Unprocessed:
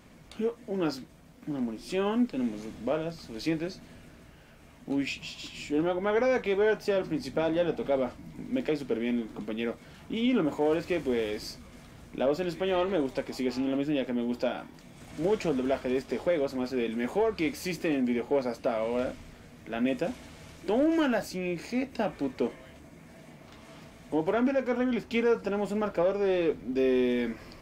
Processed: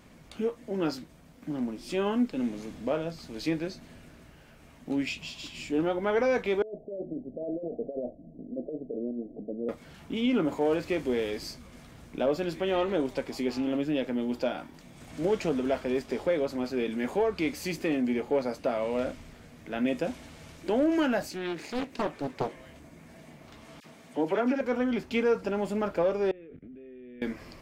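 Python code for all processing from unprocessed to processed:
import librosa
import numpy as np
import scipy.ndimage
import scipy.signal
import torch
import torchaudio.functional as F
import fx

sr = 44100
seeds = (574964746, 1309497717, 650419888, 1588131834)

y = fx.chain(x, sr, fx.over_compress(threshold_db=-29.0, ratio=-0.5),
    fx.cheby1_lowpass(hz=680.0, order=6),
    fx.peak_eq(hz=76.0, db=-13.0, octaves=2.7), at=(6.62, 9.69))
y = fx.chain(y, sr, fx.highpass(hz=190.0, slope=6),
    fx.doppler_dist(depth_ms=0.78), at=(21.3, 22.55))
y = fx.chain(y, sr, fx.highpass(hz=170.0, slope=12),
    fx.dispersion(late='lows', ms=43.0, hz=1900.0), at=(23.8, 24.61))
y = fx.chain(y, sr, fx.level_steps(step_db=22),
    fx.air_absorb(metres=480.0),
    fx.fixed_phaser(hz=2300.0, stages=4), at=(26.31, 27.22))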